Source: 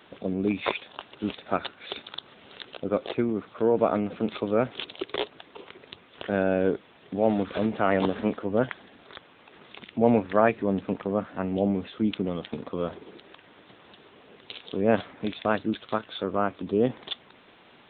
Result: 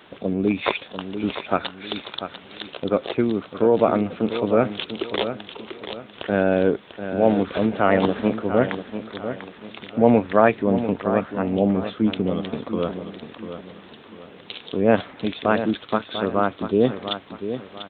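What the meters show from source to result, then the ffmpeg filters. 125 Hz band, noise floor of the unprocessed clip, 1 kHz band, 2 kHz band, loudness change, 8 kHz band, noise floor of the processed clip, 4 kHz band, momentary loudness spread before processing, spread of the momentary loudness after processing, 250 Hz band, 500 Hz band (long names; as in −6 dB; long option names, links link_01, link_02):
+5.5 dB, −55 dBFS, +5.5 dB, +5.5 dB, +5.0 dB, can't be measured, −46 dBFS, +5.5 dB, 19 LU, 16 LU, +5.5 dB, +5.5 dB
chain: -af "aecho=1:1:694|1388|2082|2776:0.316|0.111|0.0387|0.0136,volume=5dB"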